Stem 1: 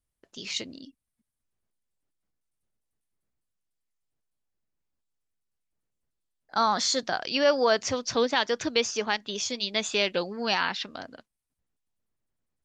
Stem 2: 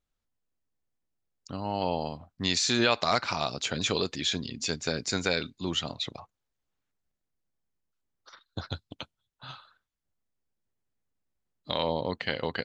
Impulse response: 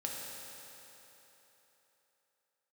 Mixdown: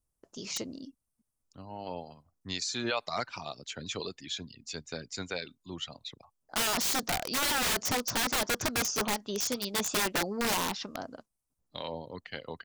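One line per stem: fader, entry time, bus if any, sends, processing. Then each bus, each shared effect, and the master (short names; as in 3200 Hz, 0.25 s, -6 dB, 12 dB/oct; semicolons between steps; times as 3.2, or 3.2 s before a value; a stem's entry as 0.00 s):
+1.5 dB, 0.00 s, no send, band shelf 2600 Hz -9.5 dB; wrapped overs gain 25 dB
-8.5 dB, 0.05 s, no send, reverb removal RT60 0.81 s; three-band expander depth 40%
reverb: off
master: dry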